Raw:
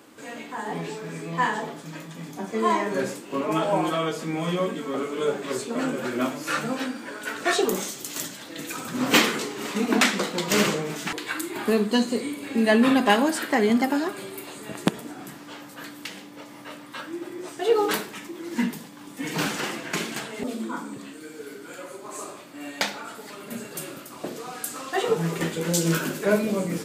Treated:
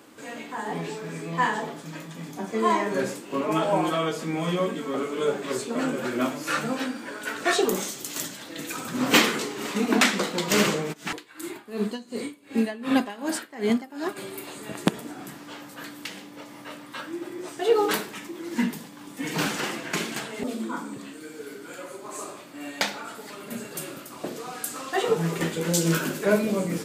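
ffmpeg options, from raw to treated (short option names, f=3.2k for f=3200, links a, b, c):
-filter_complex "[0:a]asplit=3[a][b][c];[a]afade=t=out:st=10.92:d=0.02[d];[b]aeval=exprs='val(0)*pow(10,-22*(0.5-0.5*cos(2*PI*2.7*n/s))/20)':c=same,afade=t=in:st=10.92:d=0.02,afade=t=out:st=14.15:d=0.02[e];[c]afade=t=in:st=14.15:d=0.02[f];[d][e][f]amix=inputs=3:normalize=0"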